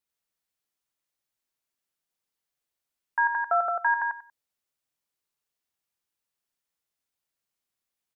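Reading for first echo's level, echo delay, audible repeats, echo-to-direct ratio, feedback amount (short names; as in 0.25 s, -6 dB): -4.0 dB, 94 ms, 3, -4.0 dB, 19%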